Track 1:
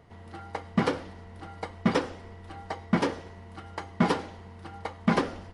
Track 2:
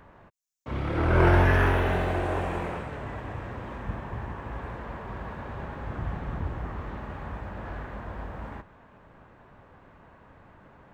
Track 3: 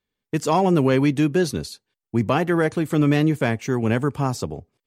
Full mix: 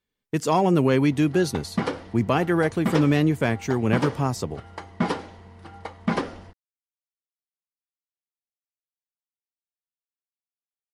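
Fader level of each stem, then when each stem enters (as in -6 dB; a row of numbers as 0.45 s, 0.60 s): -0.5 dB, mute, -1.5 dB; 1.00 s, mute, 0.00 s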